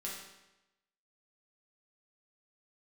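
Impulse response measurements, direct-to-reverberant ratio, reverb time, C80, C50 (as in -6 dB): -5.0 dB, 0.95 s, 5.0 dB, 2.0 dB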